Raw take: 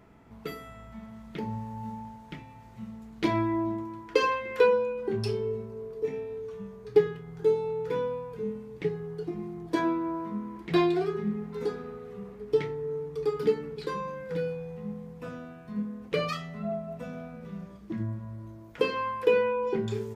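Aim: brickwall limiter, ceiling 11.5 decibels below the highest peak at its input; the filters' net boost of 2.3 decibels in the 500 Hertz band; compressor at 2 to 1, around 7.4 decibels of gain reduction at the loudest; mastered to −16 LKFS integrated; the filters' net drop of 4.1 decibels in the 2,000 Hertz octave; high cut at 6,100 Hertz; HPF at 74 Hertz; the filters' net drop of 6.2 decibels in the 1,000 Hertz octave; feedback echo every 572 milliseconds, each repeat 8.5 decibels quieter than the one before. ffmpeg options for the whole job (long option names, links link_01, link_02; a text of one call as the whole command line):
ffmpeg -i in.wav -af "highpass=74,lowpass=6100,equalizer=frequency=500:width_type=o:gain=4,equalizer=frequency=1000:width_type=o:gain=-7,equalizer=frequency=2000:width_type=o:gain=-3.5,acompressor=threshold=-28dB:ratio=2,alimiter=level_in=0.5dB:limit=-24dB:level=0:latency=1,volume=-0.5dB,aecho=1:1:572|1144|1716|2288:0.376|0.143|0.0543|0.0206,volume=18.5dB" out.wav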